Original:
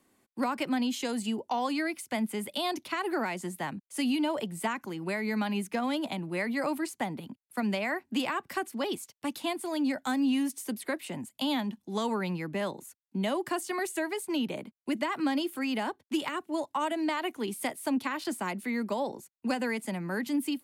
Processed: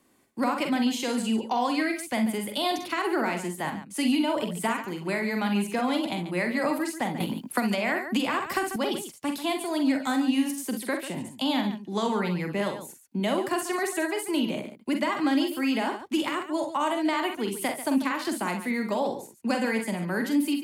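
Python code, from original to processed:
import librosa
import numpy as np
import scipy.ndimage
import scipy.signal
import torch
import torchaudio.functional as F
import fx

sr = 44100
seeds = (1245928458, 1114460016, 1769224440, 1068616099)

y = fx.high_shelf(x, sr, hz=12000.0, db=-8.5, at=(11.08, 12.25))
y = fx.echo_multitap(y, sr, ms=(45, 63, 141), db=(-6.5, -11.0, -12.0))
y = fx.band_squash(y, sr, depth_pct=100, at=(7.2, 8.76))
y = y * 10.0 ** (3.0 / 20.0)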